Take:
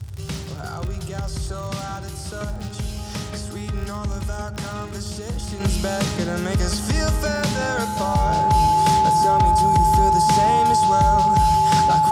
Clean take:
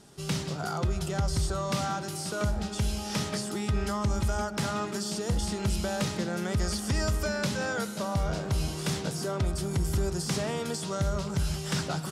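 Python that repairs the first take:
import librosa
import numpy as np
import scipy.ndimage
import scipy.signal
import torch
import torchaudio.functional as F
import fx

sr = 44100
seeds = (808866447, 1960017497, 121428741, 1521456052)

y = fx.fix_declick_ar(x, sr, threshold=6.5)
y = fx.notch(y, sr, hz=860.0, q=30.0)
y = fx.noise_reduce(y, sr, print_start_s=0.0, print_end_s=0.5, reduce_db=6.0)
y = fx.fix_level(y, sr, at_s=5.6, step_db=-7.0)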